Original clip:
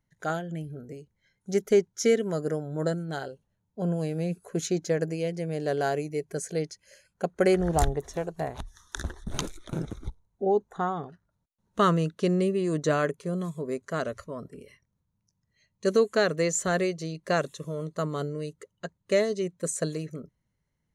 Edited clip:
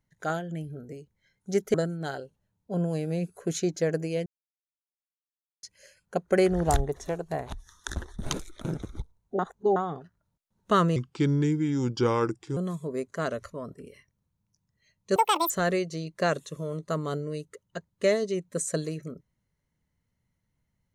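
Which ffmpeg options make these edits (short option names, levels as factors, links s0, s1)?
-filter_complex "[0:a]asplit=10[s0][s1][s2][s3][s4][s5][s6][s7][s8][s9];[s0]atrim=end=1.742[s10];[s1]atrim=start=2.818:end=5.34,asetpts=PTS-STARTPTS,afade=t=out:st=2.518:d=0.004:c=hsin[s11];[s2]atrim=start=5.34:end=6.71,asetpts=PTS-STARTPTS,volume=0[s12];[s3]atrim=start=6.71:end=10.472,asetpts=PTS-STARTPTS,afade=t=in:d=0.004:c=hsin[s13];[s4]atrim=start=10.468:end=10.842,asetpts=PTS-STARTPTS,areverse[s14];[s5]atrim=start=10.838:end=12.044[s15];[s6]atrim=start=12.04:end=13.31,asetpts=PTS-STARTPTS,asetrate=34839,aresample=44100[s16];[s7]atrim=start=13.306:end=15.904[s17];[s8]atrim=start=15.9:end=16.58,asetpts=PTS-STARTPTS,asetrate=87759,aresample=44100,atrim=end_sample=15069,asetpts=PTS-STARTPTS[s18];[s9]atrim=start=16.576[s19];[s11][s12][s13]concat=n=3:v=0:a=1[s20];[s10][s20]acrossfade=d=0.004:c1=hsin:c2=hsin[s21];[s21][s14]acrossfade=d=0.004:c1=hsin:c2=hsin[s22];[s22][s15]acrossfade=d=0.004:c1=hsin:c2=hsin[s23];[s23][s16]acrossfade=d=0.004:c1=hsin:c2=hsin[s24];[s24][s17]acrossfade=d=0.004:c1=hsin:c2=hsin[s25];[s25][s18]acrossfade=d=0.004:c1=hsin:c2=hsin[s26];[s26][s19]acrossfade=d=0.004:c1=hsin:c2=hsin"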